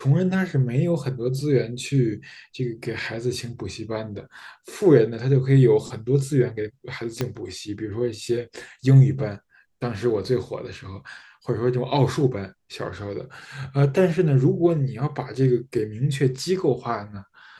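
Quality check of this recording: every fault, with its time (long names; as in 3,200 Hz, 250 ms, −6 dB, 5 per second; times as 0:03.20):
0:07.21: click −11 dBFS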